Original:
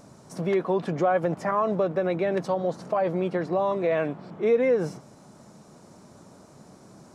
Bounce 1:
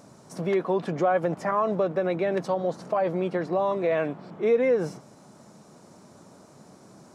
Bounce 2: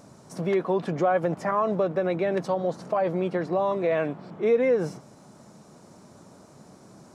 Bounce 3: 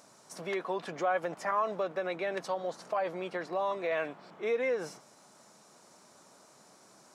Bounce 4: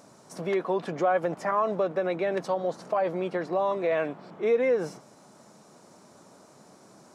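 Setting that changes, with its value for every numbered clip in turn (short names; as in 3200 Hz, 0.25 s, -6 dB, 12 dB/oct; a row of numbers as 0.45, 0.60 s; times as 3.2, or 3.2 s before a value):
HPF, cutoff: 110, 41, 1300, 370 Hz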